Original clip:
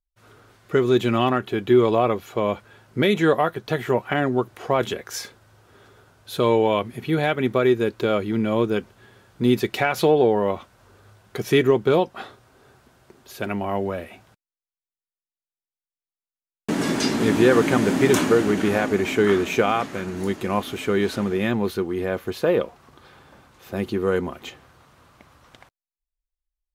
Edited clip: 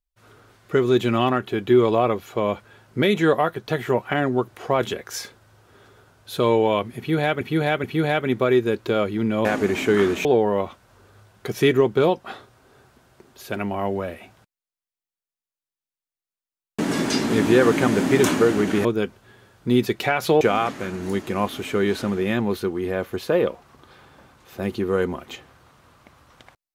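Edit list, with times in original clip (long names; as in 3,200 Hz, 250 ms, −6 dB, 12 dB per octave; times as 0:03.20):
0:06.98–0:07.41: repeat, 3 plays
0:08.59–0:10.15: swap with 0:18.75–0:19.55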